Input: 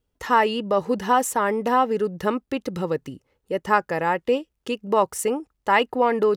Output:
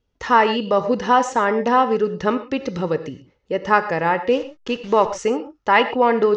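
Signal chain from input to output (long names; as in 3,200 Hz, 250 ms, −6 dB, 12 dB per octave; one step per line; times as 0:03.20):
0:04.30–0:05.17: hold until the input has moved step −38.5 dBFS
elliptic low-pass filter 6,300 Hz, stop band 60 dB
on a send: convolution reverb, pre-delay 3 ms, DRR 10.5 dB
on the sum: level +4 dB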